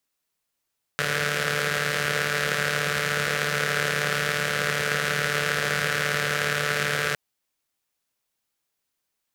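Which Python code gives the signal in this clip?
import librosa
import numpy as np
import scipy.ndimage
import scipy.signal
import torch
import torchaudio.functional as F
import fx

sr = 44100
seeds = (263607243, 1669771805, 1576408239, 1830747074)

y = fx.engine_four(sr, seeds[0], length_s=6.16, rpm=4400, resonances_hz=(170.0, 490.0, 1500.0))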